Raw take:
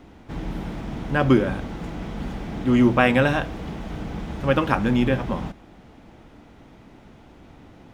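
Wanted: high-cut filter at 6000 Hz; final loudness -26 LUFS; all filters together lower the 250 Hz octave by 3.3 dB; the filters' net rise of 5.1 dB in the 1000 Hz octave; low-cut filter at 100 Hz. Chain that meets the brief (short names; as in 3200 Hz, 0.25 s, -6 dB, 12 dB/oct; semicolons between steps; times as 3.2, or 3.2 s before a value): HPF 100 Hz; LPF 6000 Hz; bell 250 Hz -4 dB; bell 1000 Hz +7 dB; gain -3 dB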